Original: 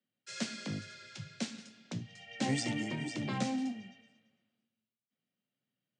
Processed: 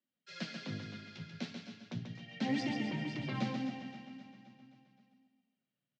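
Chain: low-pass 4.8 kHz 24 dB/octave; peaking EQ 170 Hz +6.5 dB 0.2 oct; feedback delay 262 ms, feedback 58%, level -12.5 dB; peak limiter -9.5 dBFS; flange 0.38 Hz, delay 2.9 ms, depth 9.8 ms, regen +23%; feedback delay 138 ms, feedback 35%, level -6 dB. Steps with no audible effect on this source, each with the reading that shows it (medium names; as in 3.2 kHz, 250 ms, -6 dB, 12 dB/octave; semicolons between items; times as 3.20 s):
peak limiter -9.5 dBFS: peak at its input -20.5 dBFS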